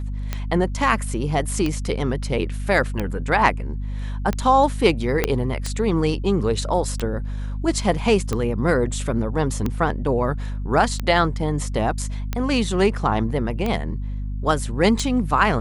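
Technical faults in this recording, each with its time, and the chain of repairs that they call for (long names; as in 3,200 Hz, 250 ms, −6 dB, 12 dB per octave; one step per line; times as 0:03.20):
mains hum 50 Hz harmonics 5 −27 dBFS
scratch tick 45 rpm −11 dBFS
0:05.24: click −4 dBFS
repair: click removal
hum removal 50 Hz, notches 5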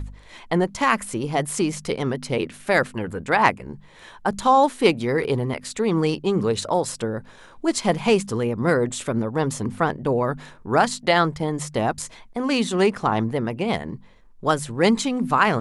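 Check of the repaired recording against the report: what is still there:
0:05.24: click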